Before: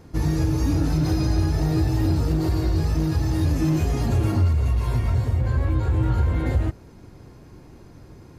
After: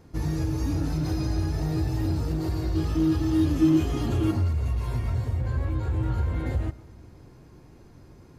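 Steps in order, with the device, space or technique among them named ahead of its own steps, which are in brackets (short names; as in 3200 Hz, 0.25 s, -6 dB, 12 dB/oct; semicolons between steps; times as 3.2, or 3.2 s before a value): compressed reverb return (on a send at -8.5 dB: reverb RT60 0.95 s, pre-delay 0.1 s + compressor, threshold -30 dBFS, peak gain reduction 15.5 dB); 2.75–4.31 on the sum: thirty-one-band EQ 315 Hz +11 dB, 1250 Hz +6 dB, 3150 Hz +10 dB; gain -5.5 dB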